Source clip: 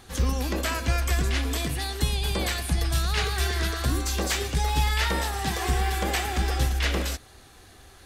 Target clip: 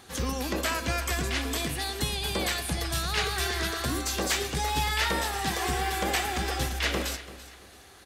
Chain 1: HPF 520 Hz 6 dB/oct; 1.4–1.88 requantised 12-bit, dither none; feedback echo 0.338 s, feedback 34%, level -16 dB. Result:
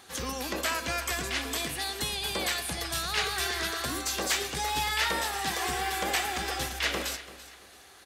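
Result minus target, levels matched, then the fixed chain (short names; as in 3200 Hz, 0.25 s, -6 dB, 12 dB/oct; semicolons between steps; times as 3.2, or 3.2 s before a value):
125 Hz band -7.5 dB
HPF 170 Hz 6 dB/oct; 1.4–1.88 requantised 12-bit, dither none; feedback echo 0.338 s, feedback 34%, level -16 dB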